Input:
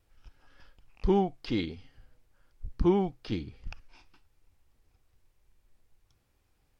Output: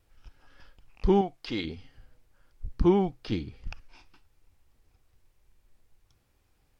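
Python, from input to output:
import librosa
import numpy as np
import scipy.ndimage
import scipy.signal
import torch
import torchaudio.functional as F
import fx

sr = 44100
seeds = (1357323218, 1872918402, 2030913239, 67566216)

y = fx.low_shelf(x, sr, hz=370.0, db=-9.0, at=(1.21, 1.65))
y = F.gain(torch.from_numpy(y), 2.5).numpy()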